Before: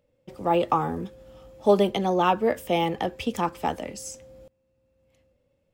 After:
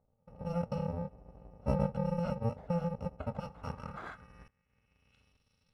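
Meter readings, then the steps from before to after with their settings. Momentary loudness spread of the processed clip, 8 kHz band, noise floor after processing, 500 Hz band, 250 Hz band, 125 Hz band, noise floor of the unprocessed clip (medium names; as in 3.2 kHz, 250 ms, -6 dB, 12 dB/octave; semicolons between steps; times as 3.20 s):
13 LU, under -20 dB, -77 dBFS, -13.5 dB, -8.5 dB, -0.5 dB, -72 dBFS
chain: bit-reversed sample order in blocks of 128 samples; low-pass sweep 700 Hz -> 3.9 kHz, 3.20–5.52 s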